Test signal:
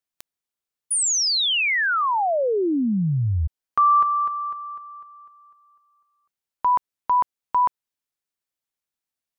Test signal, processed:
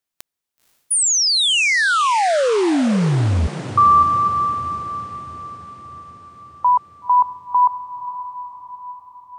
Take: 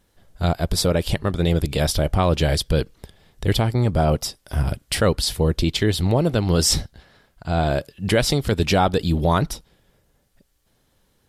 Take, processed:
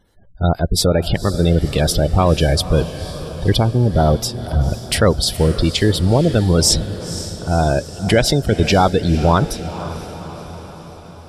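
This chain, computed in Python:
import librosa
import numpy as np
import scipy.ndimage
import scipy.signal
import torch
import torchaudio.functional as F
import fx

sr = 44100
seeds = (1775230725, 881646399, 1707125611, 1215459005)

y = fx.spec_gate(x, sr, threshold_db=-25, keep='strong')
y = fx.echo_diffused(y, sr, ms=509, feedback_pct=59, wet_db=-13.0)
y = y * 10.0 ** (4.5 / 20.0)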